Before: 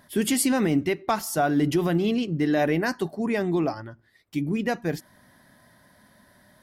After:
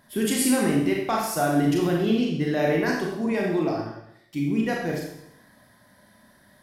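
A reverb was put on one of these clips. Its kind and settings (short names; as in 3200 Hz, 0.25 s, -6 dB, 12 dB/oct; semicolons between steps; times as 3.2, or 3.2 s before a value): Schroeder reverb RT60 0.77 s, combs from 28 ms, DRR -1.5 dB; gain -3 dB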